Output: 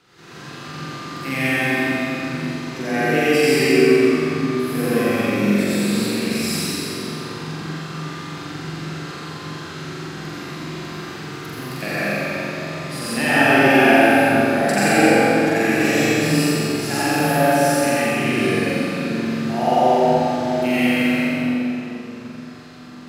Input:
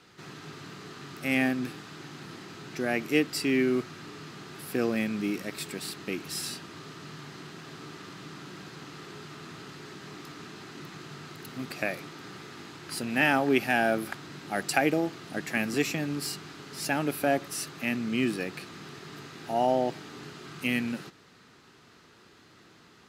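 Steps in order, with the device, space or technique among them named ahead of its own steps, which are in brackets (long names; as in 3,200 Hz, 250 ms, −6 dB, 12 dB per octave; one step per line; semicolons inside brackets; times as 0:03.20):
tunnel (flutter between parallel walls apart 7.6 metres, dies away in 1.4 s; convolution reverb RT60 3.6 s, pre-delay 75 ms, DRR −9.5 dB)
level −1.5 dB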